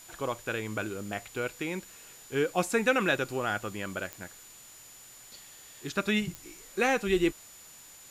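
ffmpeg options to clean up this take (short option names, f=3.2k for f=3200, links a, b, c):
-af "adeclick=t=4,bandreject=f=7k:w=30,afftdn=nr=23:nf=-51"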